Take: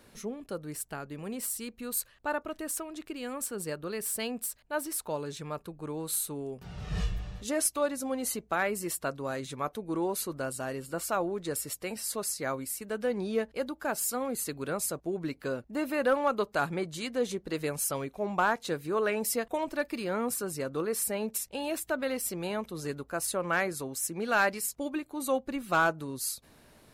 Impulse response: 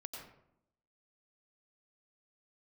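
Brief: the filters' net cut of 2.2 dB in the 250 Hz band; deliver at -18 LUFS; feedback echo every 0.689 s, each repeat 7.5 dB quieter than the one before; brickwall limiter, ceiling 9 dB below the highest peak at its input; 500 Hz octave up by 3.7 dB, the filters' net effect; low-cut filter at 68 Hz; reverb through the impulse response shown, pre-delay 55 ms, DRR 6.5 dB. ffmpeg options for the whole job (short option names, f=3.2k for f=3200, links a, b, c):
-filter_complex "[0:a]highpass=68,equalizer=f=250:t=o:g=-5,equalizer=f=500:t=o:g=5.5,alimiter=limit=-22dB:level=0:latency=1,aecho=1:1:689|1378|2067|2756|3445:0.422|0.177|0.0744|0.0312|0.0131,asplit=2[a][b];[1:a]atrim=start_sample=2205,adelay=55[c];[b][c]afir=irnorm=-1:irlink=0,volume=-3.5dB[d];[a][d]amix=inputs=2:normalize=0,volume=13.5dB"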